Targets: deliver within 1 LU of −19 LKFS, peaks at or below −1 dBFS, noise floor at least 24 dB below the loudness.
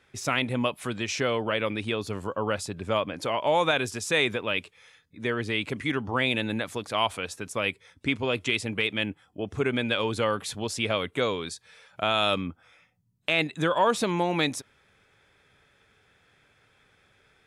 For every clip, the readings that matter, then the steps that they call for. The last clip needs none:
integrated loudness −27.5 LKFS; sample peak −11.5 dBFS; target loudness −19.0 LKFS
→ level +8.5 dB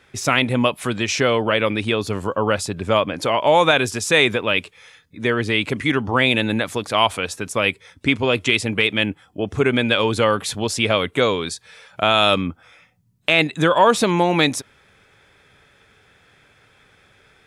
integrated loudness −19.0 LKFS; sample peak −3.0 dBFS; background noise floor −56 dBFS

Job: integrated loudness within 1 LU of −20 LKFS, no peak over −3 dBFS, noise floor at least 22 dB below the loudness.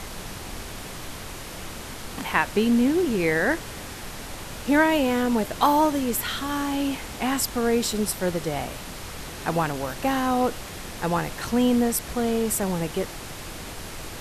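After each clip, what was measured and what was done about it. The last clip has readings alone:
number of dropouts 2; longest dropout 3.1 ms; background noise floor −37 dBFS; target noise floor −46 dBFS; integrated loudness −24.0 LKFS; sample peak −5.5 dBFS; target loudness −20.0 LKFS
→ repair the gap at 0:07.93/0:09.73, 3.1 ms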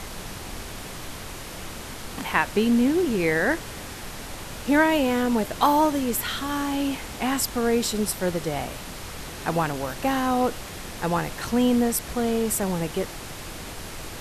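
number of dropouts 0; background noise floor −37 dBFS; target noise floor −46 dBFS
→ noise reduction from a noise print 9 dB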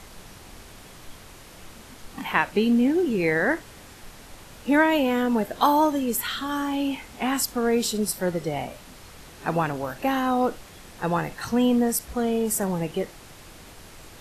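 background noise floor −46 dBFS; target noise floor −47 dBFS
→ noise reduction from a noise print 6 dB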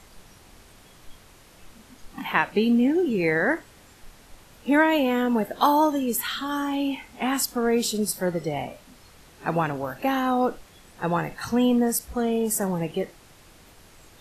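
background noise floor −52 dBFS; integrated loudness −24.0 LKFS; sample peak −6.0 dBFS; target loudness −20.0 LKFS
→ level +4 dB
brickwall limiter −3 dBFS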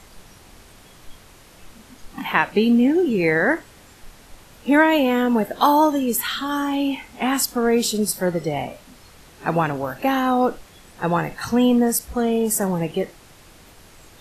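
integrated loudness −20.5 LKFS; sample peak −3.0 dBFS; background noise floor −48 dBFS

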